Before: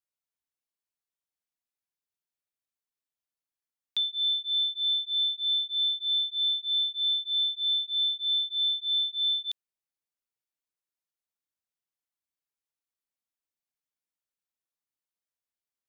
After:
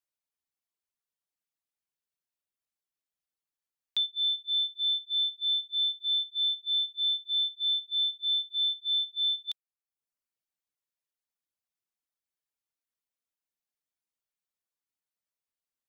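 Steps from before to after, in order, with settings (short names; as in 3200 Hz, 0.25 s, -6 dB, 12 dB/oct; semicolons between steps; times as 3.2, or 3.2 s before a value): reverb removal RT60 0.74 s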